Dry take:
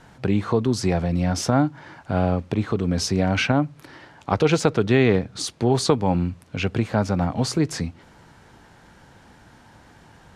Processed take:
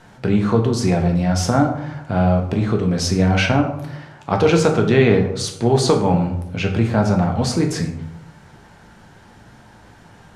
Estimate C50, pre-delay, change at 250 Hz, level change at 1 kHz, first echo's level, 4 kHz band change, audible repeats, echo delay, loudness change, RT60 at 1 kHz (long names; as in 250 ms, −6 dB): 7.0 dB, 4 ms, +4.0 dB, +4.0 dB, no echo audible, +3.0 dB, no echo audible, no echo audible, +4.5 dB, 0.80 s